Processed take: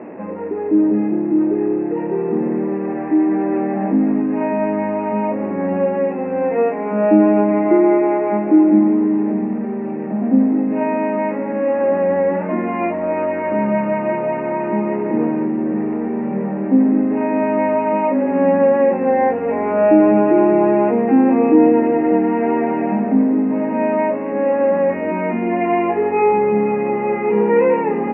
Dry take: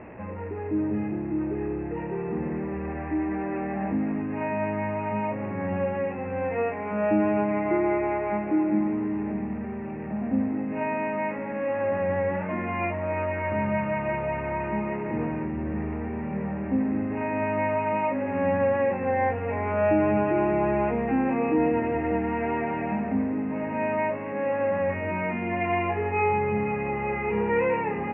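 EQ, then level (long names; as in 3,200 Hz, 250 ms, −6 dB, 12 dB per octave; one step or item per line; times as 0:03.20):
high-pass filter 240 Hz 24 dB per octave
spectral tilt −4 dB per octave
+6.5 dB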